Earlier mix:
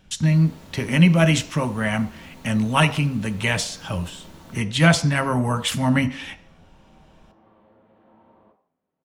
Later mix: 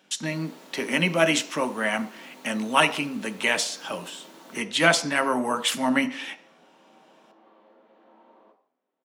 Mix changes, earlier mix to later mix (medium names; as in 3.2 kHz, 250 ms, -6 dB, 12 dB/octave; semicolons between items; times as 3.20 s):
second sound: remove distance through air 200 m; master: add high-pass 260 Hz 24 dB/octave